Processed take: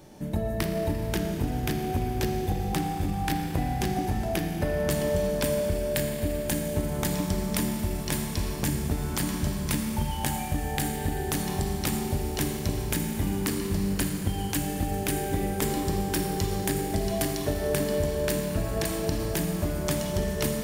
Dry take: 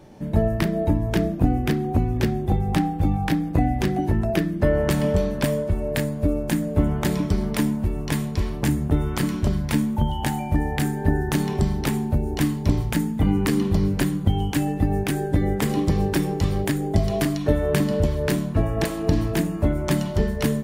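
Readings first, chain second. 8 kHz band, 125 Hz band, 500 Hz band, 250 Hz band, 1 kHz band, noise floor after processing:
+3.5 dB, −7.0 dB, −3.5 dB, −7.0 dB, −3.0 dB, −32 dBFS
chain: high-shelf EQ 4,400 Hz +11.5 dB
downward compressor, threshold −21 dBFS, peak gain reduction 9 dB
four-comb reverb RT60 3.9 s, DRR 3.5 dB
level −3.5 dB

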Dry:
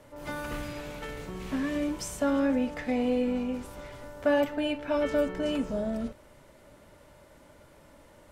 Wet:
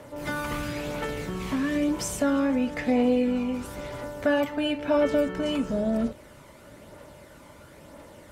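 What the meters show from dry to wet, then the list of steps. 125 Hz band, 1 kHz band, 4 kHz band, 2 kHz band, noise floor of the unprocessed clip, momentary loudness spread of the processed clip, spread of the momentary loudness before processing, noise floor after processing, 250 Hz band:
+5.5 dB, +3.5 dB, +4.5 dB, +4.0 dB, −56 dBFS, 10 LU, 13 LU, −50 dBFS, +4.0 dB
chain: high-pass filter 87 Hz 6 dB per octave
in parallel at +1.5 dB: downward compressor, threshold −35 dBFS, peak gain reduction 13.5 dB
on the sum: phase shifter 1 Hz, delay 1 ms, feedback 31%

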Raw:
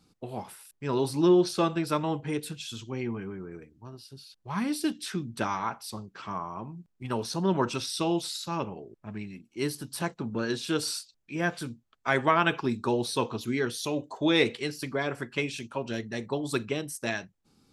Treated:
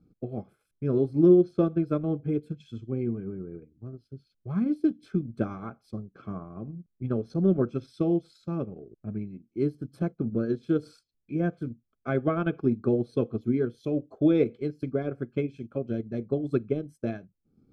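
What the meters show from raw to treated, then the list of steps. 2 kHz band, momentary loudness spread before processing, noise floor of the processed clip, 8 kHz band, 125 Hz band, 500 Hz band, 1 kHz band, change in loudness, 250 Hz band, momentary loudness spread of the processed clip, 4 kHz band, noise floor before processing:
−12.0 dB, 16 LU, −77 dBFS, below −25 dB, +4.5 dB, +2.0 dB, −10.5 dB, +1.5 dB, +3.5 dB, 15 LU, below −20 dB, −74 dBFS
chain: transient designer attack +3 dB, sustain −7 dB
moving average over 47 samples
level +4.5 dB

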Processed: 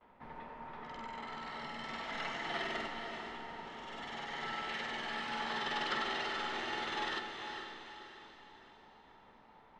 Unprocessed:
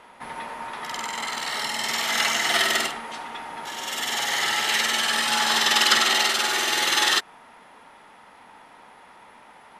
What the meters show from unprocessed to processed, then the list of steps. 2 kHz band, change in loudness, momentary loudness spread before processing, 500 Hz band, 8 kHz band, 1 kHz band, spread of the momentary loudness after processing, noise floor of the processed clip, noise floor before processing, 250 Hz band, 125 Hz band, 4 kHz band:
−16.0 dB, −18.0 dB, 17 LU, −10.5 dB, −31.5 dB, −12.5 dB, 16 LU, −61 dBFS, −50 dBFS, −9.0 dB, −5.5 dB, −20.0 dB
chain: low-pass filter 4,000 Hz 12 dB per octave
noise gate with hold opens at −40 dBFS
spectral tilt −3 dB per octave
tuned comb filter 440 Hz, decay 0.59 s, mix 70%
feedback delay with all-pass diffusion 452 ms, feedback 46%, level −6 dB
level −4.5 dB

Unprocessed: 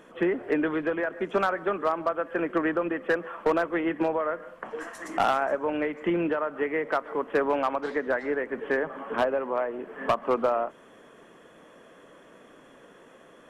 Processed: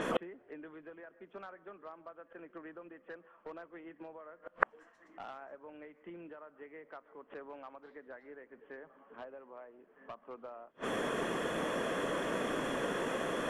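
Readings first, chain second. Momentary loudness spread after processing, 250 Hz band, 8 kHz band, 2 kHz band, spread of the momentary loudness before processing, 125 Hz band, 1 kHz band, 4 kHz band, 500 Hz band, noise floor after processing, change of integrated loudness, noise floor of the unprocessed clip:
17 LU, −13.0 dB, can't be measured, −9.5 dB, 6 LU, −7.5 dB, −12.5 dB, −2.5 dB, −13.0 dB, −66 dBFS, −12.0 dB, −53 dBFS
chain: gate with flip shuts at −34 dBFS, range −40 dB
low-pass that shuts in the quiet parts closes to 2,900 Hz, open at −51 dBFS
level +17 dB

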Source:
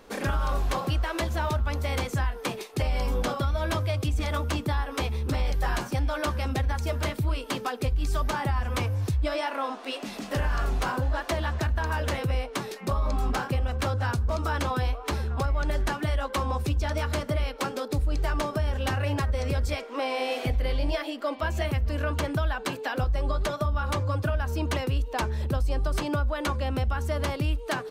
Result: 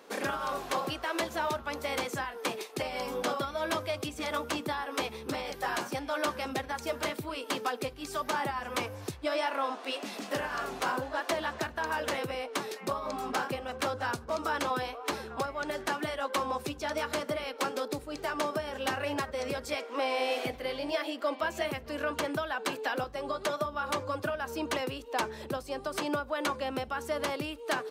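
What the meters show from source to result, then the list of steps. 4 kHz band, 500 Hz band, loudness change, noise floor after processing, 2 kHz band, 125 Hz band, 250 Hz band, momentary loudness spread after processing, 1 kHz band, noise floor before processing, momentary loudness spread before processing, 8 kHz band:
−1.0 dB, −1.5 dB, −5.0 dB, −47 dBFS, −1.0 dB, −19.0 dB, −4.5 dB, 4 LU, −1.0 dB, −40 dBFS, 3 LU, −1.0 dB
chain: high-pass filter 270 Hz 12 dB per octave
level −1 dB

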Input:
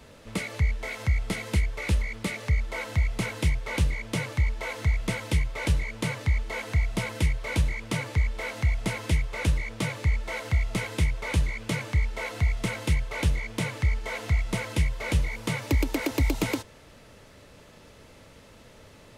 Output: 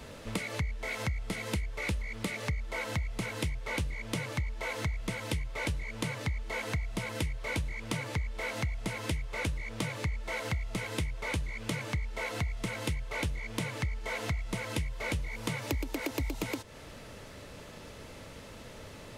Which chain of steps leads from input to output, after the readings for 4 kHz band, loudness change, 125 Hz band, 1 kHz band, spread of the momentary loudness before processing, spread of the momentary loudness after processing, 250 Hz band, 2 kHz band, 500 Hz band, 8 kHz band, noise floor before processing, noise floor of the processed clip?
−3.5 dB, −6.5 dB, −8.5 dB, −3.0 dB, 4 LU, 13 LU, −5.5 dB, −4.0 dB, −3.5 dB, −4.0 dB, −52 dBFS, −48 dBFS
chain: downward compressor 6 to 1, threshold −35 dBFS, peak gain reduction 16 dB
level +4 dB

